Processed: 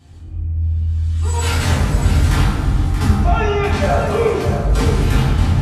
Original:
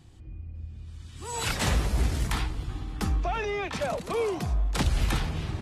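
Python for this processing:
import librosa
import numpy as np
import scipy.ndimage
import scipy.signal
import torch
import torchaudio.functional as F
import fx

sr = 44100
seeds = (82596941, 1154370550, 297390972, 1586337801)

p1 = fx.dynamic_eq(x, sr, hz=160.0, q=0.99, threshold_db=-40.0, ratio=4.0, max_db=5)
p2 = fx.rider(p1, sr, range_db=3, speed_s=0.5)
p3 = p2 + fx.echo_single(p2, sr, ms=629, db=-8.5, dry=0)
y = fx.rev_fdn(p3, sr, rt60_s=1.6, lf_ratio=1.25, hf_ratio=0.55, size_ms=68.0, drr_db=-8.5)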